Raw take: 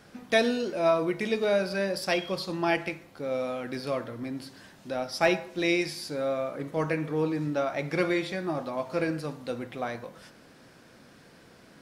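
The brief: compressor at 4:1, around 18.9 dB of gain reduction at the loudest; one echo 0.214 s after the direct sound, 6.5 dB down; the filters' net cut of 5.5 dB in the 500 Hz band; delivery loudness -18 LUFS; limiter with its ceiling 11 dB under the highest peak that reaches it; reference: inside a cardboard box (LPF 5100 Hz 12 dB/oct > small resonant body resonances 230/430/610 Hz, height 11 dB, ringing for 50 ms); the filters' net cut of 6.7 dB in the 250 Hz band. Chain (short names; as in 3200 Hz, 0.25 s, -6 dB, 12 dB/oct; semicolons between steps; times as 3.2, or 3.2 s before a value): bell 250 Hz -7.5 dB; bell 500 Hz -5.5 dB; compressor 4:1, threshold -45 dBFS; limiter -38 dBFS; LPF 5100 Hz 12 dB/oct; echo 0.214 s -6.5 dB; small resonant body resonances 230/430/610 Hz, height 11 dB, ringing for 50 ms; gain +26 dB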